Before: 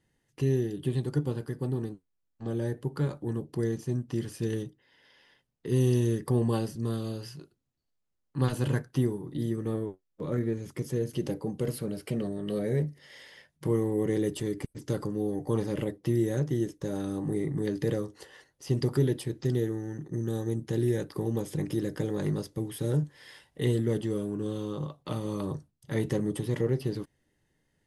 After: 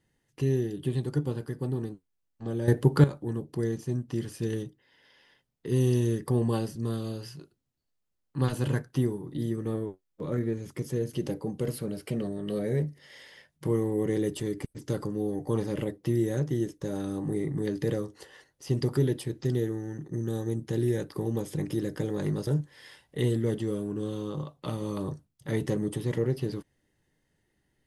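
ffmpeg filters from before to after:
-filter_complex "[0:a]asplit=4[a][b][c][d];[a]atrim=end=2.682[e];[b]atrim=start=2.678:end=3.042,asetpts=PTS-STARTPTS,volume=11dB[f];[c]atrim=start=3.038:end=22.472[g];[d]atrim=start=22.898[h];[e][f]acrossfade=d=0.004:c1=hsin:c2=hsin[i];[i][g]acrossfade=d=0.004:c1=hsin:c2=hsin[j];[j][h]acrossfade=d=0.004:c1=hsin:c2=hsin"

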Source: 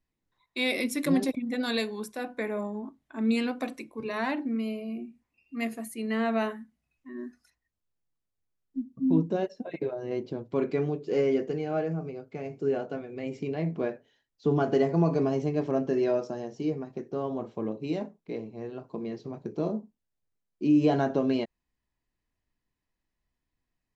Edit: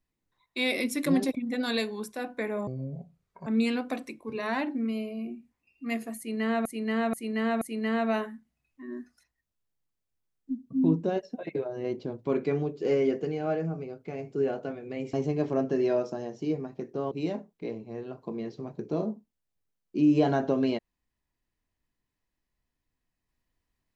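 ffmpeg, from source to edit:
-filter_complex "[0:a]asplit=8[a][b][c][d][e][f][g][h];[a]atrim=end=2.674[i];[b]atrim=start=2.67:end=3.17,asetpts=PTS-STARTPTS,asetrate=27783,aresample=44100[j];[c]atrim=start=3.166:end=6.362[k];[d]atrim=start=5.878:end=6.362[l];[e]atrim=start=5.878:end=6.362[m];[f]atrim=start=5.878:end=13.402[n];[g]atrim=start=15.308:end=17.292[o];[h]atrim=start=17.778[p];[i][j]acrossfade=d=0.004:c1=hsin:c2=hsin[q];[q][k]acrossfade=d=0.004:c1=hsin:c2=hsin[r];[r][l]acrossfade=d=0.004:c1=hsin:c2=hsin[s];[s][m]acrossfade=d=0.004:c1=hsin:c2=hsin[t];[t][n]acrossfade=d=0.004:c1=hsin:c2=hsin[u];[u][o]acrossfade=d=0.004:c1=hsin:c2=hsin[v];[v][p]acrossfade=d=0.004:c1=hsin:c2=hsin"

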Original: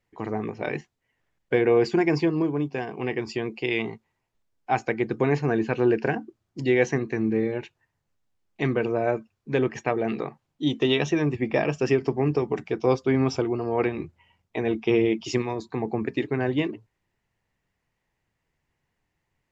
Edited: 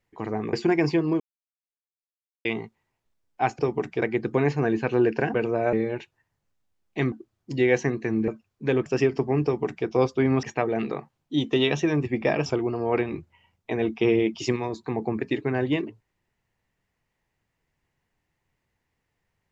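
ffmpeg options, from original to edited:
-filter_complex "[0:a]asplit=13[a][b][c][d][e][f][g][h][i][j][k][l][m];[a]atrim=end=0.532[n];[b]atrim=start=1.818:end=2.49,asetpts=PTS-STARTPTS,afade=t=out:st=0.668:d=0.004:c=hsin[o];[c]atrim=start=2.49:end=3.74,asetpts=PTS-STARTPTS,volume=0[p];[d]atrim=start=3.74:end=4.882,asetpts=PTS-STARTPTS,afade=t=in:d=0.004:c=hsin[q];[e]atrim=start=12.328:end=12.762[r];[f]atrim=start=4.878:end=6.202[s];[g]atrim=start=8.748:end=9.142[t];[h]atrim=start=7.358:end=8.752[u];[i]atrim=start=6.198:end=7.362[v];[j]atrim=start=9.138:end=9.722[w];[k]atrim=start=11.748:end=13.322[x];[l]atrim=start=9.718:end=11.752[y];[m]atrim=start=13.318[z];[o][p][q]concat=n=3:v=0:a=1[aa];[n][aa]acrossfade=d=0.004:c1=hsin:c2=hsin[ab];[ab][r]acrossfade=d=0.004:c1=hsin:c2=hsin[ac];[ac][s]acrossfade=d=0.004:c1=hsin:c2=hsin[ad];[ad][t]acrossfade=d=0.004:c1=hsin:c2=hsin[ae];[ae][u]acrossfade=d=0.004:c1=hsin:c2=hsin[af];[af][v]acrossfade=d=0.004:c1=hsin:c2=hsin[ag];[ag][w]acrossfade=d=0.004:c1=hsin:c2=hsin[ah];[ah][x]acrossfade=d=0.004:c1=hsin:c2=hsin[ai];[ai][y]acrossfade=d=0.004:c1=hsin:c2=hsin[aj];[aj][z]acrossfade=d=0.004:c1=hsin:c2=hsin"

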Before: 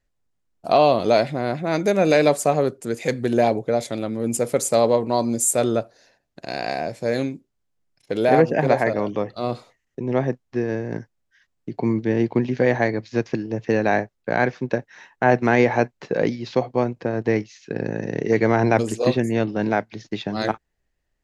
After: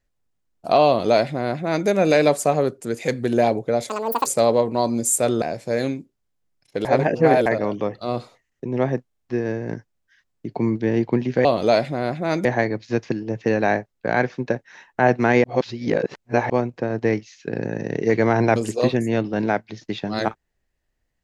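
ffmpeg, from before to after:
-filter_complex "[0:a]asplit=13[a][b][c][d][e][f][g][h][i][j][k][l][m];[a]atrim=end=3.894[n];[b]atrim=start=3.89:end=4.61,asetpts=PTS-STARTPTS,asetrate=85995,aresample=44100,atrim=end_sample=16283,asetpts=PTS-STARTPTS[o];[c]atrim=start=4.606:end=5.772[p];[d]atrim=start=6.768:end=8.202[q];[e]atrim=start=8.198:end=8.812,asetpts=PTS-STARTPTS,areverse[r];[f]atrim=start=8.808:end=10.462[s];[g]atrim=start=10.418:end=10.462[t];[h]atrim=start=10.418:end=10.462[u];[i]atrim=start=10.418:end=12.682[v];[j]atrim=start=0.868:end=1.872[w];[k]atrim=start=12.678:end=15.672[x];[l]atrim=start=15.668:end=16.732,asetpts=PTS-STARTPTS,areverse[y];[m]atrim=start=16.728[z];[n][o]acrossfade=d=0.004:c1=hsin:c2=hsin[aa];[aa][p]acrossfade=d=0.004:c1=hsin:c2=hsin[ab];[ab][q]acrossfade=d=0.004:c1=hsin:c2=hsin[ac];[ac][r]acrossfade=d=0.004:c1=hsin:c2=hsin[ad];[ad][s]acrossfade=d=0.004:c1=hsin:c2=hsin[ae];[ae][t]acrossfade=d=0.004:c1=hsin:c2=hsin[af];[af][u]acrossfade=d=0.004:c1=hsin:c2=hsin[ag];[ag][v]acrossfade=d=0.004:c1=hsin:c2=hsin[ah];[ah][w]acrossfade=d=0.004:c1=hsin:c2=hsin[ai];[ai][x]acrossfade=d=0.004:c1=hsin:c2=hsin[aj];[aj][y]acrossfade=d=0.004:c1=hsin:c2=hsin[ak];[ak][z]acrossfade=d=0.004:c1=hsin:c2=hsin"

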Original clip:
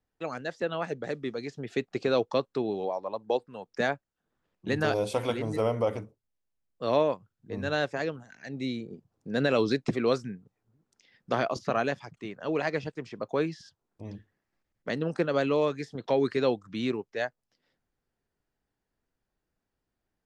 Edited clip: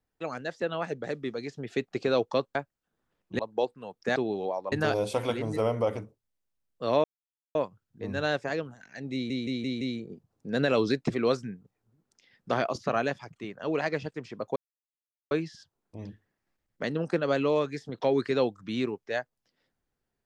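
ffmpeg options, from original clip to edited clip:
-filter_complex "[0:a]asplit=11[a][b][c][d][e][f][g][h][i][j][k];[a]atrim=end=2.552[l];[b]atrim=start=3.878:end=4.722[m];[c]atrim=start=3.108:end=3.882[n];[d]atrim=start=2.548:end=3.112[o];[e]atrim=start=4.718:end=7.04,asetpts=PTS-STARTPTS,afade=t=out:st=2.318:d=0.004:c=hsin,apad=pad_dur=0.51[p];[f]atrim=start=7.04:end=8.792,asetpts=PTS-STARTPTS,afade=t=in:d=0.004:c=hsin[q];[g]atrim=start=8.618:end=8.792[r];[h]atrim=start=8.618:end=8.792[s];[i]atrim=start=8.618:end=8.792[t];[j]atrim=start=8.618:end=13.37,asetpts=PTS-STARTPTS,afade=t=out:st=4.748:d=0.004:c=hsin,apad=pad_dur=0.75[u];[k]atrim=start=13.37,asetpts=PTS-STARTPTS,afade=t=in:d=0.004:c=hsin[v];[l][m]acrossfade=d=0.004:c1=hsin:c2=hsin[w];[w][n]acrossfade=d=0.004:c1=hsin:c2=hsin[x];[x][o]acrossfade=d=0.004:c1=hsin:c2=hsin[y];[p][q]concat=n=2:v=0:a=1[z];[y][z]acrossfade=d=0.004:c1=hsin:c2=hsin[aa];[aa][r]acrossfade=d=0.004:c1=hsin:c2=hsin[ab];[ab][s]acrossfade=d=0.004:c1=hsin:c2=hsin[ac];[ac][t]acrossfade=d=0.004:c1=hsin:c2=hsin[ad];[u][v]concat=n=2:v=0:a=1[ae];[ad][ae]acrossfade=d=0.004:c1=hsin:c2=hsin"

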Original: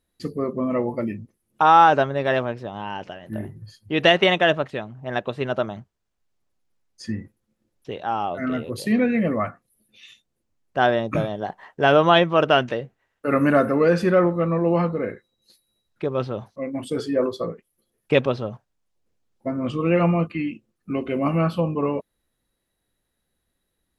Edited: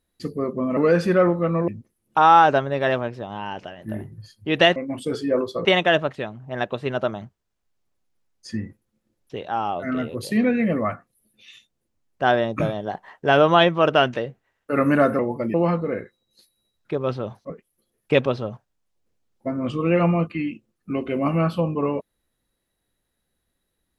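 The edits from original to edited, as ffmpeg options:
-filter_complex "[0:a]asplit=8[a][b][c][d][e][f][g][h];[a]atrim=end=0.772[i];[b]atrim=start=13.738:end=14.652[j];[c]atrim=start=1.118:end=4.202[k];[d]atrim=start=16.608:end=17.502[l];[e]atrim=start=4.198:end=13.742[m];[f]atrim=start=0.768:end=1.122[n];[g]atrim=start=14.648:end=16.612[o];[h]atrim=start=17.498[p];[i][j]acrossfade=d=0.004:c1=hsin:c2=hsin[q];[q][k]acrossfade=d=0.004:c1=hsin:c2=hsin[r];[r][l]acrossfade=d=0.004:c1=hsin:c2=hsin[s];[s][m]acrossfade=d=0.004:c1=hsin:c2=hsin[t];[t][n]acrossfade=d=0.004:c1=hsin:c2=hsin[u];[u][o]acrossfade=d=0.004:c1=hsin:c2=hsin[v];[v][p]acrossfade=d=0.004:c1=hsin:c2=hsin"

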